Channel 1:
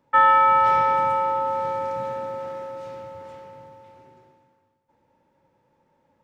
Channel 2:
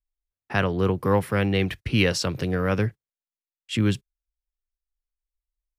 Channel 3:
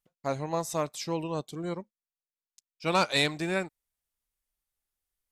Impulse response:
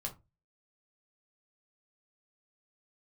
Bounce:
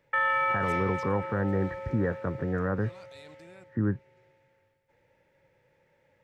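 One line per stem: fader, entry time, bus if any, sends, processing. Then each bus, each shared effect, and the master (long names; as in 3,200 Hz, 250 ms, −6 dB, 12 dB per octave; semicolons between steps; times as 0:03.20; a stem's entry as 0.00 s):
−0.5 dB, 0.00 s, no send, octave-band graphic EQ 125/250/500/1,000/2,000 Hz +4/−11/+6/−11/+12 dB; automatic ducking −11 dB, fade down 1.00 s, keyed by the second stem
−4.0 dB, 0.00 s, no send, Chebyshev low-pass filter 1,900 Hz, order 10
−14.0 dB, 0.00 s, no send, output level in coarse steps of 19 dB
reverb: not used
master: brickwall limiter −18 dBFS, peak gain reduction 9 dB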